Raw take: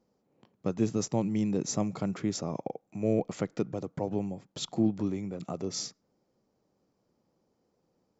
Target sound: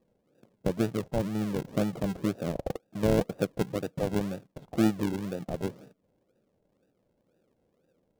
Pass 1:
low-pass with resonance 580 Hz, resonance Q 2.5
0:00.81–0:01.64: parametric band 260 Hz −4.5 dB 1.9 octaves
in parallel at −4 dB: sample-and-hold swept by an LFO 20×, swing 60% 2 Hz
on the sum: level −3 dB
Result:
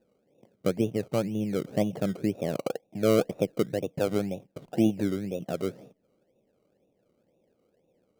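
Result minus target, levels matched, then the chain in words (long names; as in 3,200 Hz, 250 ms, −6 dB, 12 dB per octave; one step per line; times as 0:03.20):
sample-and-hold swept by an LFO: distortion −16 dB
low-pass with resonance 580 Hz, resonance Q 2.5
0:00.81–0:01.64: parametric band 260 Hz −4.5 dB 1.9 octaves
in parallel at −4 dB: sample-and-hold swept by an LFO 58×, swing 60% 2 Hz
on the sum: level −3 dB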